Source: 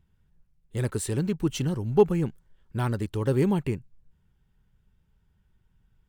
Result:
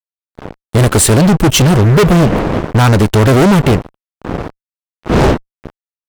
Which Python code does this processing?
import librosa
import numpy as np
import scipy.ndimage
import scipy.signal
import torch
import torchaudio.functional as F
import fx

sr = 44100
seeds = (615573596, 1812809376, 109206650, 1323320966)

y = fx.dmg_wind(x, sr, seeds[0], corner_hz=400.0, level_db=-42.0)
y = fx.fuzz(y, sr, gain_db=36.0, gate_db=-44.0)
y = y * librosa.db_to_amplitude(7.0)